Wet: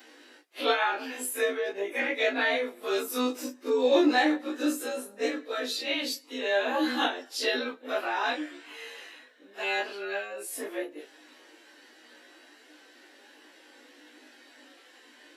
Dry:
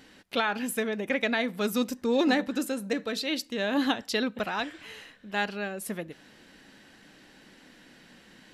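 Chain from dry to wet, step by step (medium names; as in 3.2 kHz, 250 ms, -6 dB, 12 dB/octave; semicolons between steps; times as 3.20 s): short-time spectra conjugated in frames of 40 ms; plain phase-vocoder stretch 1.8×; elliptic high-pass 280 Hz, stop band 40 dB; trim +7.5 dB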